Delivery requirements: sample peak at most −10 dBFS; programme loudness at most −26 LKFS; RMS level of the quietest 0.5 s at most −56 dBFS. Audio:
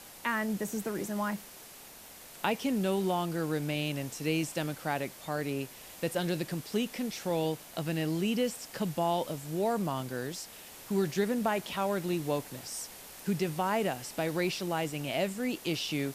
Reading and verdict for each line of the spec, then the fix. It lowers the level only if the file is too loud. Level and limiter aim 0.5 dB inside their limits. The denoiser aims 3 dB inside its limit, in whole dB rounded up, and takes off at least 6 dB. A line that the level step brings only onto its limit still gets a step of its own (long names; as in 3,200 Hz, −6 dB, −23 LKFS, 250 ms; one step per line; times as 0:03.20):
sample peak −14.5 dBFS: in spec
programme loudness −33.0 LKFS: in spec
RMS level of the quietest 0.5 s −50 dBFS: out of spec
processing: broadband denoise 9 dB, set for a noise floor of −50 dBFS